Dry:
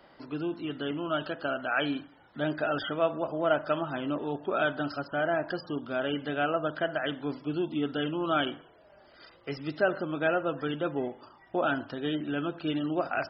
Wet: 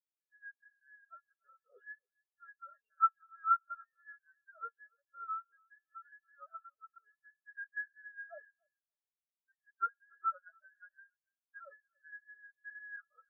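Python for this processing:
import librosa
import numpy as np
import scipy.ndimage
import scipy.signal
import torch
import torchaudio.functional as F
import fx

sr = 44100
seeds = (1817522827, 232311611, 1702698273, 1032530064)

p1 = fx.band_invert(x, sr, width_hz=2000)
p2 = fx.lpc_vocoder(p1, sr, seeds[0], excitation='pitch_kept', order=16)
p3 = scipy.signal.sosfilt(scipy.signal.butter(4, 280.0, 'highpass', fs=sr, output='sos'), p2)
p4 = p3 + fx.echo_feedback(p3, sr, ms=286, feedback_pct=46, wet_db=-8.5, dry=0)
p5 = fx.spectral_expand(p4, sr, expansion=4.0)
y = p5 * librosa.db_to_amplitude(-6.0)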